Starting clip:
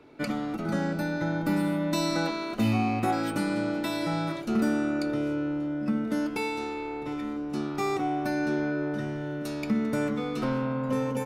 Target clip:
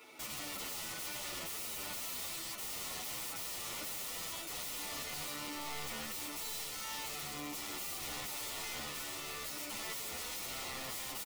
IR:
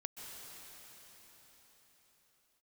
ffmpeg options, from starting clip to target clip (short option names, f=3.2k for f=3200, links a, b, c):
-filter_complex "[0:a]aderivative[a];[1:a]atrim=start_sample=2205,atrim=end_sample=6174[b];[a][b]afir=irnorm=-1:irlink=0,asplit=2[c][d];[d]aeval=exprs='(mod(141*val(0)+1,2)-1)/141':c=same,volume=-7dB[e];[c][e]amix=inputs=2:normalize=0,acompressor=threshold=-54dB:ratio=5,equalizer=f=4.2k:w=3.6:g=-7,acontrast=39,aeval=exprs='(mod(316*val(0)+1,2)-1)/316':c=same,asuperstop=centerf=1600:order=4:qfactor=6.8,asplit=2[f][g];[g]adelay=8.7,afreqshift=-1.4[h];[f][h]amix=inputs=2:normalize=1,volume=16dB"